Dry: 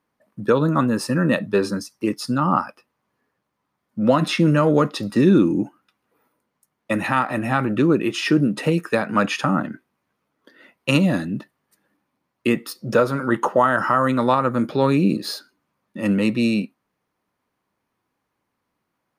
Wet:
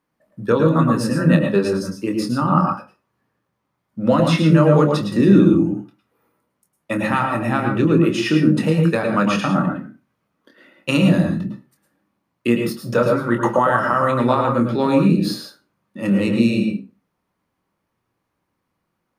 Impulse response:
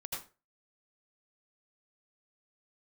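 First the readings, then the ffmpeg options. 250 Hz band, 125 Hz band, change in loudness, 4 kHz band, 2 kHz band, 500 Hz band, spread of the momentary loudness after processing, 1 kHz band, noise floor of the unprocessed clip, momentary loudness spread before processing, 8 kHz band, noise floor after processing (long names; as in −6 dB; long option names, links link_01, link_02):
+3.0 dB, +5.0 dB, +2.5 dB, +0.5 dB, +0.5 dB, +2.0 dB, 10 LU, +1.0 dB, −77 dBFS, 9 LU, 0.0 dB, −75 dBFS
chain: -filter_complex "[0:a]asplit=2[link_01][link_02];[1:a]atrim=start_sample=2205,lowshelf=frequency=390:gain=9,adelay=25[link_03];[link_02][link_03]afir=irnorm=-1:irlink=0,volume=-3dB[link_04];[link_01][link_04]amix=inputs=2:normalize=0,volume=-1.5dB"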